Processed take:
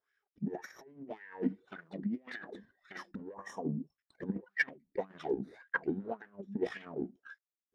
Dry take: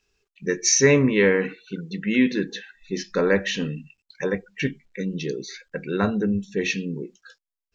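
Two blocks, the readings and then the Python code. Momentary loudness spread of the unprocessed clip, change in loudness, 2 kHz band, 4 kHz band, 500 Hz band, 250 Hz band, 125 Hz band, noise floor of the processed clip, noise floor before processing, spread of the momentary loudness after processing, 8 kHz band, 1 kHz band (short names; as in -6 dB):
17 LU, -16.0 dB, -12.0 dB, -25.0 dB, -17.0 dB, -14.5 dB, -17.0 dB, under -85 dBFS, under -85 dBFS, 15 LU, -38.0 dB, -9.5 dB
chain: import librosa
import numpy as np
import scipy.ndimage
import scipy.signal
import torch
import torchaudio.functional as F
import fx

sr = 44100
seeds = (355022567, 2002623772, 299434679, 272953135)

y = fx.lower_of_two(x, sr, delay_ms=0.57)
y = fx.spec_box(y, sr, start_s=3.34, length_s=0.64, low_hz=1200.0, high_hz=5300.0, gain_db=-23)
y = fx.over_compress(y, sr, threshold_db=-28.0, ratio=-0.5)
y = fx.transient(y, sr, attack_db=6, sustain_db=1)
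y = fx.wah_lfo(y, sr, hz=1.8, low_hz=210.0, high_hz=1800.0, q=5.2)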